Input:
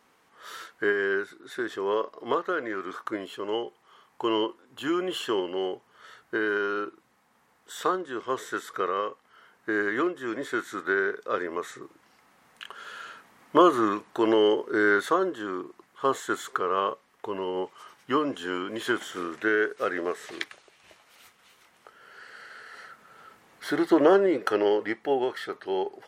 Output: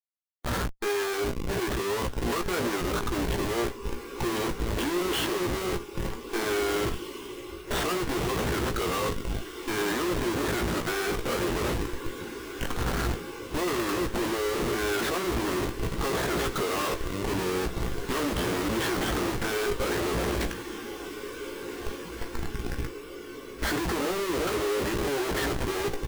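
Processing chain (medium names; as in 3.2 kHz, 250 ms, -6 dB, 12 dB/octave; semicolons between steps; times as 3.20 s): band-stop 7.1 kHz, Q 6.7; on a send: feedback echo behind a low-pass 358 ms, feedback 49%, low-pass 1 kHz, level -17 dB; on the sum: wavefolder -13 dBFS; hum 60 Hz, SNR 31 dB; Schmitt trigger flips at -37.5 dBFS; echo that smears into a reverb 1778 ms, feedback 70%, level -10 dB; spectral noise reduction 10 dB; doubling 17 ms -7 dB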